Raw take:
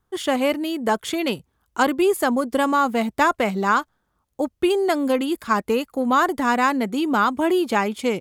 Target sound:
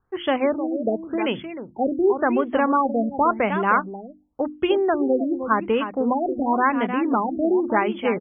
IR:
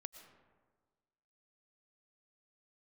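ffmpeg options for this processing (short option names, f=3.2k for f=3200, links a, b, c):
-filter_complex "[0:a]bandreject=f=50:t=h:w=6,bandreject=f=100:t=h:w=6,bandreject=f=150:t=h:w=6,bandreject=f=200:t=h:w=6,bandreject=f=250:t=h:w=6,bandreject=f=300:t=h:w=6,bandreject=f=350:t=h:w=6,asplit=2[a][b];[b]aecho=0:1:308:0.335[c];[a][c]amix=inputs=2:normalize=0,afftfilt=real='re*lt(b*sr/1024,710*pow(3500/710,0.5+0.5*sin(2*PI*0.91*pts/sr)))':imag='im*lt(b*sr/1024,710*pow(3500/710,0.5+0.5*sin(2*PI*0.91*pts/sr)))':win_size=1024:overlap=0.75"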